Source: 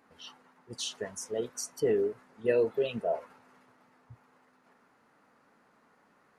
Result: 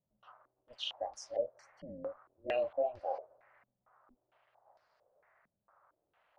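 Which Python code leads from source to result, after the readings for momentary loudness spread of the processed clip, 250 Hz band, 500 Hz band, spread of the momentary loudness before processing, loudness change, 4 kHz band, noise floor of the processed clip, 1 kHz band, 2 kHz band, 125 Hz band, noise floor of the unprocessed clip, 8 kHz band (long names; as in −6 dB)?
12 LU, −14.5 dB, −7.5 dB, 20 LU, −7.0 dB, −3.0 dB, below −85 dBFS, +1.5 dB, −7.0 dB, −15.0 dB, −67 dBFS, below −15 dB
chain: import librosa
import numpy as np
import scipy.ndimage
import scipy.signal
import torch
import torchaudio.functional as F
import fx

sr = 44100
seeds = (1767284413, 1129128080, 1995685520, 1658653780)

y = x * np.sin(2.0 * np.pi * 130.0 * np.arange(len(x)) / sr)
y = fx.low_shelf_res(y, sr, hz=450.0, db=-9.0, q=3.0)
y = fx.filter_held_lowpass(y, sr, hz=4.4, low_hz=210.0, high_hz=4800.0)
y = F.gain(torch.from_numpy(y), -7.5).numpy()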